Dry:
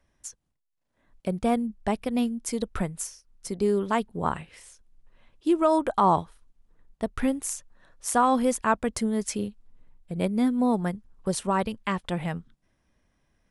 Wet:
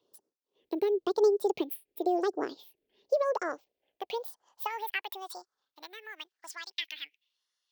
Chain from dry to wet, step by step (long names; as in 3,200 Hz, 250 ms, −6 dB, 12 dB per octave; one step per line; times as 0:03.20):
downward compressor, threshold −23 dBFS, peak gain reduction 7.5 dB
all-pass phaser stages 4, 0.55 Hz, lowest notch 660–1,400 Hz
change of speed 1.75×
high-pass filter sweep 400 Hz → 2,200 Hz, 0:03.02–0:06.64
level −2.5 dB